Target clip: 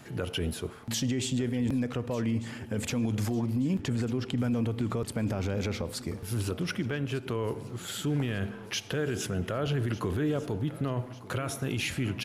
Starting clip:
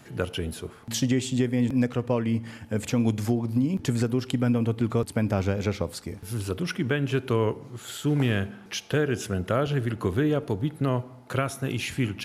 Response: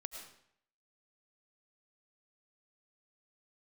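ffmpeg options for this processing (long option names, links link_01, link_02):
-filter_complex "[0:a]asettb=1/sr,asplit=3[link_01][link_02][link_03];[link_01]atrim=end=3.814[link_04];[link_02]atrim=start=3.81:end=4.38,asetpts=PTS-STARTPTS,afade=type=in:duration=0.004:curve=qsin,afade=type=out:start_time=0.566:duration=0.004:curve=qsin,lowpass=frequency=3600:poles=1[link_05];[link_03]atrim=start=4.376[link_06];[link_04][link_05]acrossfade=duration=0.004:curve1=hsin:curve2=qsin[link_07];[link_07][link_06]acrossfade=duration=0.004:curve1=qsin:curve2=hsin,asplit=3[link_08][link_09][link_10];[link_08]afade=type=out:start_time=6.53:duration=0.02[link_11];[link_09]acompressor=threshold=-28dB:ratio=6,afade=type=in:start_time=6.53:duration=0.02,afade=type=out:start_time=7.35:duration=0.02[link_12];[link_10]afade=type=in:start_time=7.35:duration=0.02[link_13];[link_11][link_12][link_13]amix=inputs=3:normalize=0,alimiter=limit=-22dB:level=0:latency=1:release=30,aecho=1:1:1198|2396|3594|4792:0.126|0.0629|0.0315|0.0157,asplit=2[link_14][link_15];[1:a]atrim=start_sample=2205,lowpass=7800[link_16];[link_15][link_16]afir=irnorm=-1:irlink=0,volume=-15.5dB[link_17];[link_14][link_17]amix=inputs=2:normalize=0"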